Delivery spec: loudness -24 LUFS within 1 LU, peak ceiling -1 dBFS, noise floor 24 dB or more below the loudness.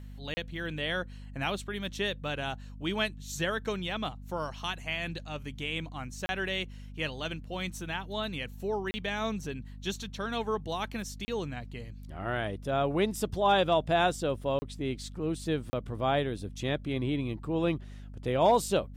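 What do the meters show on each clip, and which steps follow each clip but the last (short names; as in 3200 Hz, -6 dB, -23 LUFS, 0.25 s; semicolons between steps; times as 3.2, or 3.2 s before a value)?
dropouts 6; longest dropout 30 ms; hum 50 Hz; harmonics up to 250 Hz; hum level -42 dBFS; loudness -32.0 LUFS; peak -14.5 dBFS; loudness target -24.0 LUFS
-> interpolate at 0.34/6.26/8.91/11.25/14.59/15.7, 30 ms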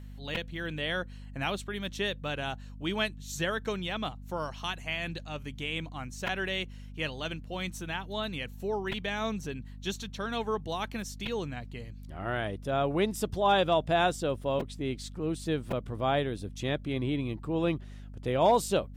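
dropouts 0; hum 50 Hz; harmonics up to 250 Hz; hum level -42 dBFS
-> de-hum 50 Hz, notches 5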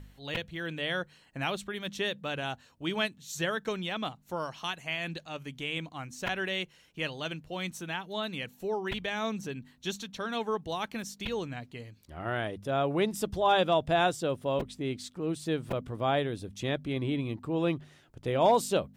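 hum none; loudness -32.5 LUFS; peak -14.0 dBFS; loudness target -24.0 LUFS
-> gain +8.5 dB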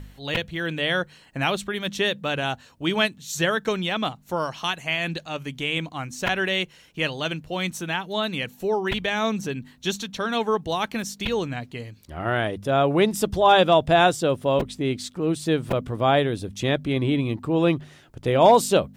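loudness -24.0 LUFS; peak -5.5 dBFS; noise floor -53 dBFS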